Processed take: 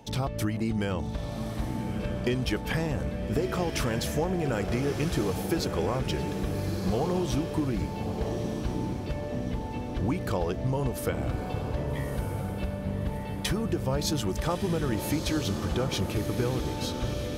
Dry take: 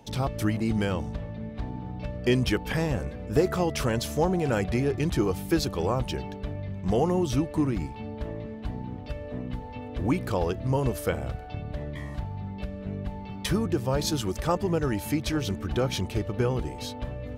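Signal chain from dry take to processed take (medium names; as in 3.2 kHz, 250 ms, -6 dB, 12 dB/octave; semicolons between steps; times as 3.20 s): compression, threshold -26 dBFS, peak gain reduction 9.5 dB; on a send: echo that smears into a reverb 1251 ms, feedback 49%, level -6.5 dB; on the sum: trim +1.5 dB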